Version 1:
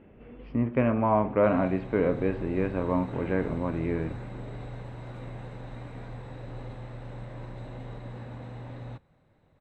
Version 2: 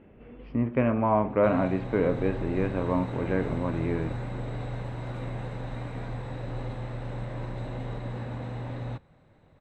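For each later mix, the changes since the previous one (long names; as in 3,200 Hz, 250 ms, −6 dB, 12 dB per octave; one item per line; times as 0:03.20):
background +5.5 dB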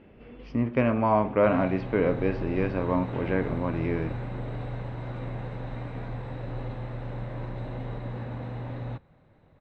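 speech: remove high-frequency loss of the air 430 metres
master: add high-frequency loss of the air 120 metres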